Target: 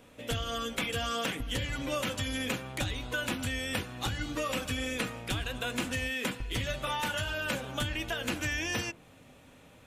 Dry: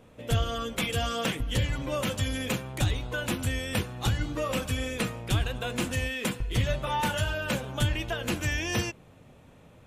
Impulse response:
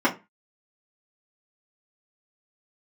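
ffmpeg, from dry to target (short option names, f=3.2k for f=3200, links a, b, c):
-filter_complex "[0:a]tiltshelf=f=970:g=-5,acrossover=split=2000|5900[a][b][c];[a]acompressor=threshold=-31dB:ratio=4[d];[b]acompressor=threshold=-39dB:ratio=4[e];[c]acompressor=threshold=-46dB:ratio=4[f];[d][e][f]amix=inputs=3:normalize=0,asplit=2[g][h];[1:a]atrim=start_sample=2205,lowpass=f=1.5k:w=0.5412,lowpass=f=1.5k:w=1.3066[i];[h][i]afir=irnorm=-1:irlink=0,volume=-27dB[j];[g][j]amix=inputs=2:normalize=0"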